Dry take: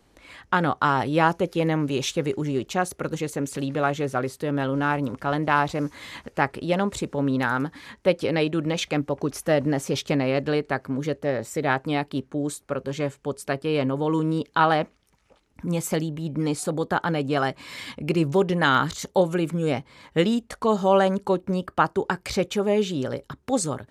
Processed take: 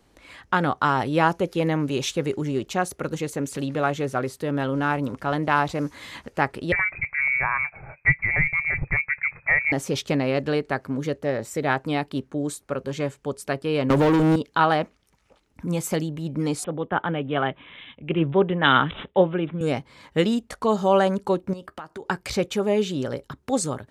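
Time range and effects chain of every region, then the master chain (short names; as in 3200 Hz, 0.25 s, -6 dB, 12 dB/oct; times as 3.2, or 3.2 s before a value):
6.72–9.72 inverted band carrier 2500 Hz + resonant low shelf 190 Hz +10 dB, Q 3
13.9–14.36 sample leveller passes 3 + three-band squash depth 100%
16.64–19.61 careless resampling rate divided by 6×, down none, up filtered + three-band expander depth 70%
21.53–22.1 low shelf 330 Hz -4.5 dB + compressor 8:1, threshold -33 dBFS + doubler 13 ms -13 dB
whole clip: dry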